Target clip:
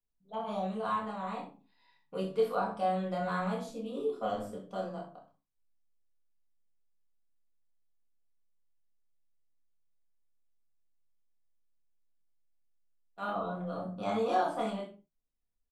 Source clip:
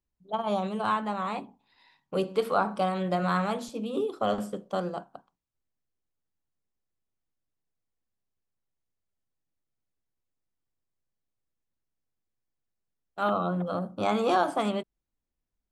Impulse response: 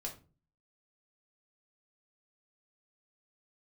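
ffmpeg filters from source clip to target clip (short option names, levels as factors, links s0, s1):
-filter_complex "[0:a]aecho=1:1:27|66:0.596|0.299[s0];[1:a]atrim=start_sample=2205,afade=t=out:st=0.25:d=0.01,atrim=end_sample=11466[s1];[s0][s1]afir=irnorm=-1:irlink=0,volume=0.422"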